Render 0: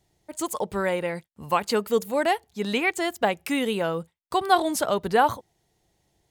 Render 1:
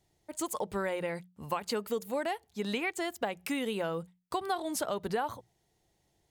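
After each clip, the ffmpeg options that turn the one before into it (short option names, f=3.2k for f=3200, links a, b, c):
-af "bandreject=f=60:t=h:w=6,bandreject=f=120:t=h:w=6,bandreject=f=180:t=h:w=6,acompressor=threshold=-25dB:ratio=6,volume=-4dB"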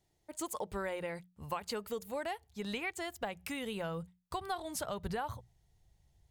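-af "asubboost=boost=10:cutoff=96,volume=-4dB"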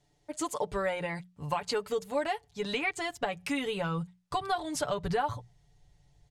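-af "lowpass=7.9k,aecho=1:1:6.9:0.74,volume=5dB"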